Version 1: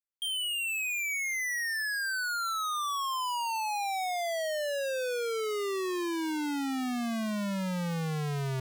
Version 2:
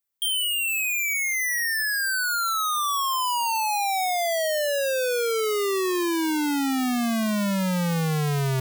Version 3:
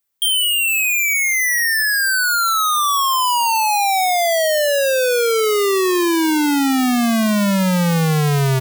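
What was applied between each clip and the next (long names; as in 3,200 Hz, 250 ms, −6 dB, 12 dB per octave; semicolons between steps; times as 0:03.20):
high-shelf EQ 11,000 Hz +11.5 dB; in parallel at +1.5 dB: speech leveller
single-tap delay 208 ms −24 dB; level +8 dB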